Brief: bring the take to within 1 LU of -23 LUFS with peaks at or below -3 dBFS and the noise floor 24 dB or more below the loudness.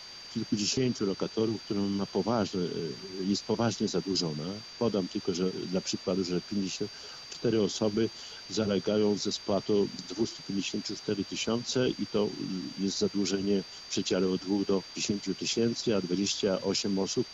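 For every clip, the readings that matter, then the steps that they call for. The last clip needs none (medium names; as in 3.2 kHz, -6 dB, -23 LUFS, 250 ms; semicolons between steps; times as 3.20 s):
steady tone 4.7 kHz; tone level -45 dBFS; noise floor -46 dBFS; noise floor target -55 dBFS; loudness -30.5 LUFS; peak level -17.0 dBFS; loudness target -23.0 LUFS
-> band-stop 4.7 kHz, Q 30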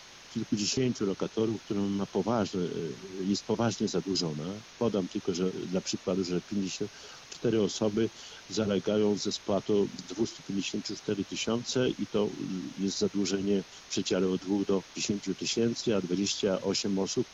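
steady tone not found; noise floor -51 dBFS; noise floor target -55 dBFS
-> noise reduction 6 dB, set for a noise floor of -51 dBFS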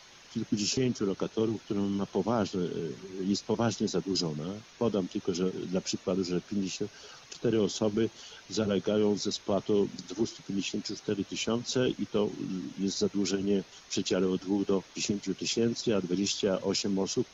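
noise floor -54 dBFS; noise floor target -55 dBFS
-> noise reduction 6 dB, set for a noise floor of -54 dBFS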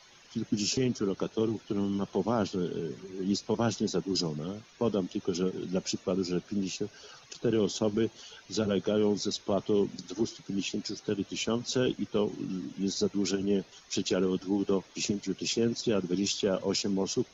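noise floor -57 dBFS; loudness -31.0 LUFS; peak level -17.5 dBFS; loudness target -23.0 LUFS
-> trim +8 dB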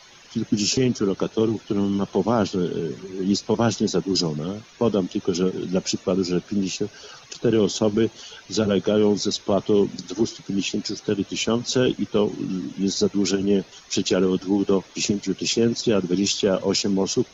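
loudness -23.0 LUFS; peak level -9.5 dBFS; noise floor -49 dBFS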